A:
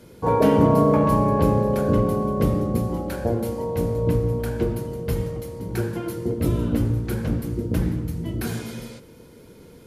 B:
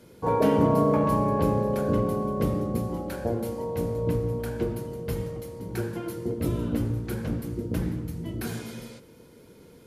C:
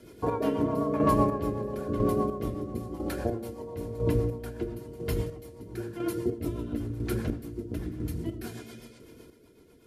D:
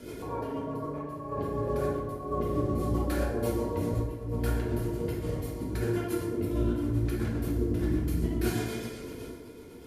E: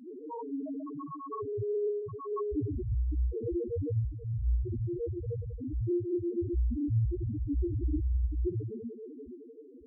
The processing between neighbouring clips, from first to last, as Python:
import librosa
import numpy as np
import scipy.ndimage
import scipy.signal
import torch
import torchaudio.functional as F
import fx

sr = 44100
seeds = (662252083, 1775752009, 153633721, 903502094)

y1 = fx.low_shelf(x, sr, hz=78.0, db=-6.0)
y1 = y1 * 10.0 ** (-4.0 / 20.0)
y2 = y1 + 0.47 * np.pad(y1, (int(2.9 * sr / 1000.0), 0))[:len(y1)]
y2 = fx.rotary(y2, sr, hz=8.0)
y2 = fx.chopper(y2, sr, hz=1.0, depth_pct=60, duty_pct=30)
y2 = y2 * 10.0 ** (3.0 / 20.0)
y3 = fx.over_compress(y2, sr, threshold_db=-36.0, ratio=-1.0)
y3 = fx.rev_plate(y3, sr, seeds[0], rt60_s=1.0, hf_ratio=0.6, predelay_ms=0, drr_db=-3.5)
y4 = fx.spec_topn(y3, sr, count=1)
y4 = y4 * 10.0 ** (7.0 / 20.0)